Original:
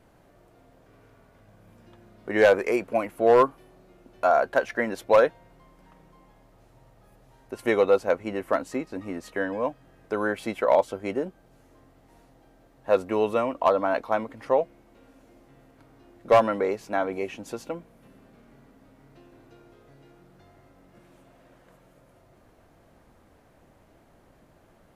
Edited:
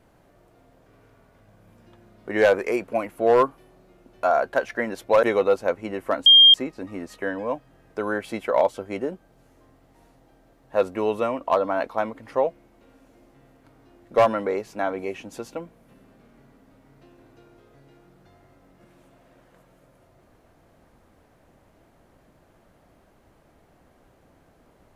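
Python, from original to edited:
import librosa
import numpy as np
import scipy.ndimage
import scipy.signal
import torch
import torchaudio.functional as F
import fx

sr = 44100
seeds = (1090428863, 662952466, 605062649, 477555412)

y = fx.edit(x, sr, fx.cut(start_s=5.23, length_s=2.42),
    fx.insert_tone(at_s=8.68, length_s=0.28, hz=3210.0, db=-8.0), tone=tone)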